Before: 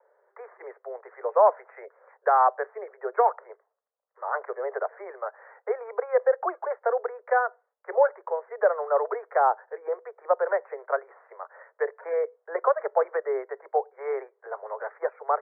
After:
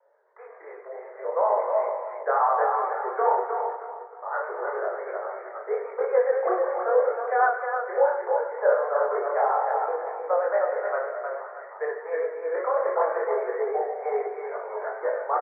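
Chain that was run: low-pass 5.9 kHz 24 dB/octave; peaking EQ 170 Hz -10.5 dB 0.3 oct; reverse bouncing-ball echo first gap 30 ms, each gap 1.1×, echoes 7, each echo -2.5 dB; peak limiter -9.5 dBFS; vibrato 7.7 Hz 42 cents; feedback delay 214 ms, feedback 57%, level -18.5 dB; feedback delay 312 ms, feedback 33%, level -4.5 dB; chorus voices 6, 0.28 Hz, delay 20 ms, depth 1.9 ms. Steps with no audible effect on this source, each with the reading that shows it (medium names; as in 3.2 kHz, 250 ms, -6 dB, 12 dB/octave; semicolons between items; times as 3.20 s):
low-pass 5.9 kHz: input has nothing above 1.9 kHz; peaking EQ 170 Hz: input has nothing below 340 Hz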